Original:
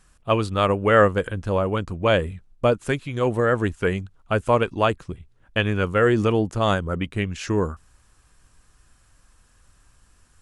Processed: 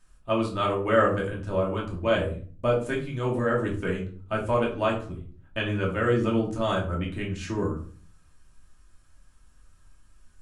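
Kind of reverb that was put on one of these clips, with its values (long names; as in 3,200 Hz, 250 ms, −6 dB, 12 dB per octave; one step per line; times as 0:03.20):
rectangular room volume 350 cubic metres, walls furnished, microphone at 2.7 metres
level −10 dB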